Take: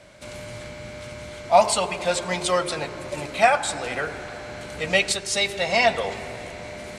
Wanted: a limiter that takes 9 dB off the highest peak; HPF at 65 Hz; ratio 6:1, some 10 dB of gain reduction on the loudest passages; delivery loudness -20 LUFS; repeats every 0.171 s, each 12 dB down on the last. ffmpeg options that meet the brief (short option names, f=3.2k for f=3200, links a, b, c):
-af "highpass=65,acompressor=threshold=-21dB:ratio=6,alimiter=limit=-19dB:level=0:latency=1,aecho=1:1:171|342|513:0.251|0.0628|0.0157,volume=10.5dB"